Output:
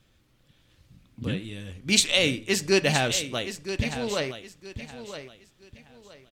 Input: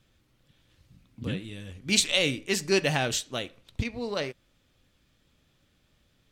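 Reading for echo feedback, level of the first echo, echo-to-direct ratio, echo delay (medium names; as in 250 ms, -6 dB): 28%, -11.0 dB, -10.5 dB, 968 ms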